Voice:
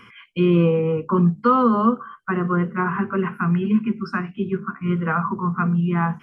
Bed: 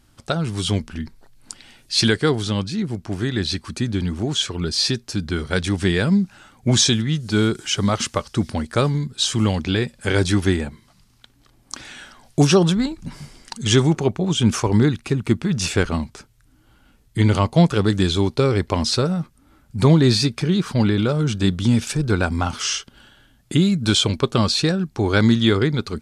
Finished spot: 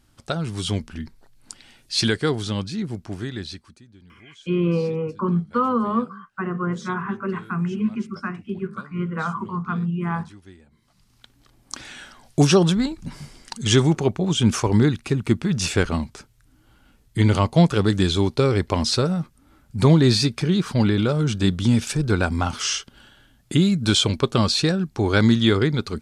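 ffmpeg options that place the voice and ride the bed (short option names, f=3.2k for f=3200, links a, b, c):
-filter_complex "[0:a]adelay=4100,volume=-4.5dB[a];[1:a]volume=23dB,afade=t=out:st=2.95:d=0.87:silence=0.0630957,afade=t=in:st=10.68:d=0.53:silence=0.0473151[b];[a][b]amix=inputs=2:normalize=0"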